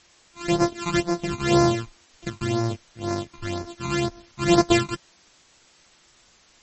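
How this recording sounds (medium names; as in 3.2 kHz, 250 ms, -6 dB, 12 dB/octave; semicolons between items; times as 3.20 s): a buzz of ramps at a fixed pitch in blocks of 128 samples; phasing stages 12, 2 Hz, lowest notch 530–3100 Hz; a quantiser's noise floor 10-bit, dither triangular; MP3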